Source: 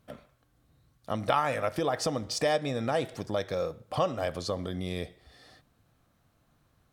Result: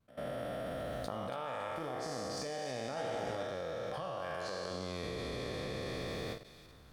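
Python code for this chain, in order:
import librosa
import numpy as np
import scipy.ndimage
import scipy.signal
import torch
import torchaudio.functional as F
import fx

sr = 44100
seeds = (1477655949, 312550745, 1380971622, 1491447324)

y = fx.spec_trails(x, sr, decay_s=2.88)
y = fx.recorder_agc(y, sr, target_db=-10.5, rise_db_per_s=53.0, max_gain_db=30)
y = fx.high_shelf(y, sr, hz=4500.0, db=-4.5)
y = fx.comb_fb(y, sr, f0_hz=64.0, decay_s=0.89, harmonics='all', damping=0.0, mix_pct=60)
y = fx.level_steps(y, sr, step_db=18)
y = fx.graphic_eq_31(y, sr, hz=(100, 250, 1600), db=(-9, -12, 7), at=(3.94, 4.71))
y = fx.echo_wet_highpass(y, sr, ms=281, feedback_pct=36, hz=2700.0, wet_db=-11.5)
y = fx.vibrato(y, sr, rate_hz=0.34, depth_cents=13.0)
y = fx.doubler(y, sr, ms=17.0, db=-3, at=(2.95, 3.43))
y = fx.end_taper(y, sr, db_per_s=140.0)
y = F.gain(torch.from_numpy(y), -3.5).numpy()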